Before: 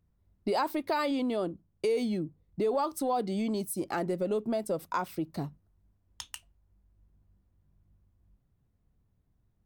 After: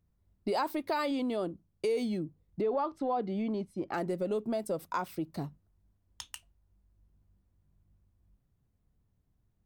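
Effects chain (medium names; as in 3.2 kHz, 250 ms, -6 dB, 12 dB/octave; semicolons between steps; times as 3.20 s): 2.61–3.94 s: low-pass 2.6 kHz 12 dB/octave; trim -2 dB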